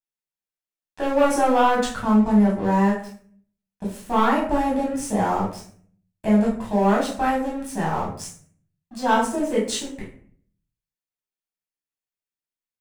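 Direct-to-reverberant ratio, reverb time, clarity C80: −5.5 dB, 0.55 s, 10.0 dB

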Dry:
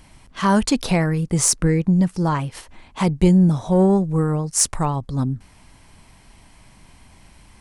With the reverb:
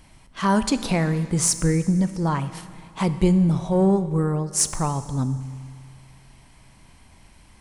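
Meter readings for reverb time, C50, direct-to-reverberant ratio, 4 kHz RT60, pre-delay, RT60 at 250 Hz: 2.2 s, 12.5 dB, 11.5 dB, 2.1 s, 13 ms, 2.2 s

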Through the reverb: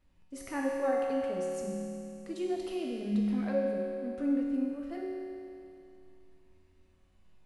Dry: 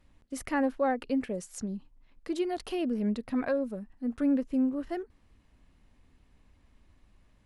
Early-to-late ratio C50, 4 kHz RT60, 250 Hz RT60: −1.0 dB, 2.6 s, 2.6 s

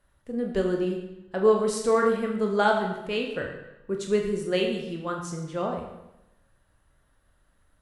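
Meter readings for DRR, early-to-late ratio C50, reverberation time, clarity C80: 1.0 dB, 5.5 dB, 0.90 s, 7.0 dB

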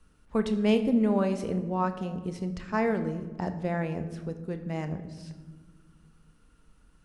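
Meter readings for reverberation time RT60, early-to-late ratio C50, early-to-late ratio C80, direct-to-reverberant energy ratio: 1.5 s, 10.5 dB, 13.0 dB, 8.0 dB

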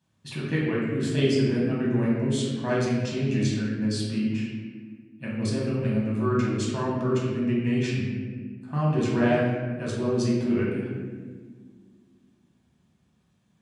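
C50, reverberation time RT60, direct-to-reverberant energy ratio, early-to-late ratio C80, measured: 0.0 dB, 1.6 s, −6.0 dB, 2.5 dB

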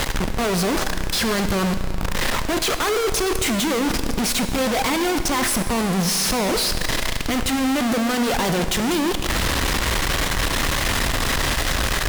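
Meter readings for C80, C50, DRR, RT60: 10.0 dB, 9.0 dB, 8.0 dB, 2.3 s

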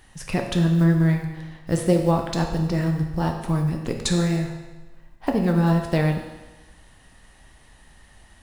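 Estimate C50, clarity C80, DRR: 5.5 dB, 7.5 dB, 2.0 dB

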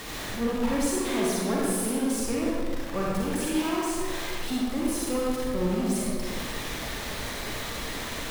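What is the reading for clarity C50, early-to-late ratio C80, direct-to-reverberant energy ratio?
−3.5 dB, −0.5 dB, −5.5 dB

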